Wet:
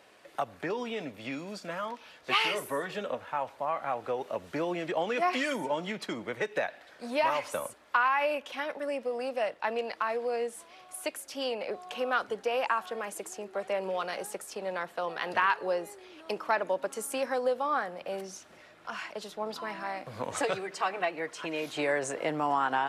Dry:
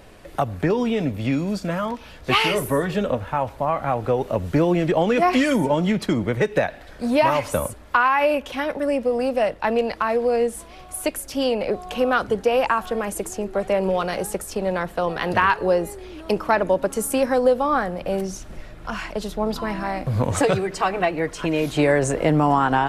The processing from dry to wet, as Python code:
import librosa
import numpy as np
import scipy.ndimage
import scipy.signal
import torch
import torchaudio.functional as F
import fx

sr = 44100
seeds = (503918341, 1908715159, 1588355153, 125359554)

y = fx.weighting(x, sr, curve='A')
y = F.gain(torch.from_numpy(y), -8.0).numpy()